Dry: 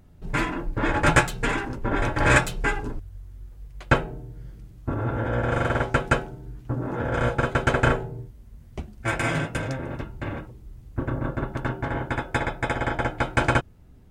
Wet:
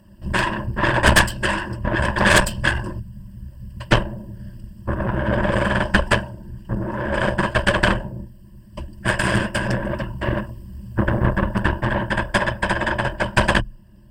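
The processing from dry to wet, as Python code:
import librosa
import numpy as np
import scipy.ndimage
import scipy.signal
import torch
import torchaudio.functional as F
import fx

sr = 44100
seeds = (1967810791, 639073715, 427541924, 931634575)

p1 = fx.peak_eq(x, sr, hz=370.0, db=-14.5, octaves=0.3)
p2 = fx.whisperise(p1, sr, seeds[0])
p3 = fx.rider(p2, sr, range_db=10, speed_s=2.0)
p4 = p2 + (p3 * librosa.db_to_amplitude(2.0))
p5 = fx.ripple_eq(p4, sr, per_octave=1.3, db=16)
p6 = fx.cheby_harmonics(p5, sr, harmonics=(5, 6), levels_db=(-16, -10), full_scale_db=7.0)
y = p6 * librosa.db_to_amplitude(-10.0)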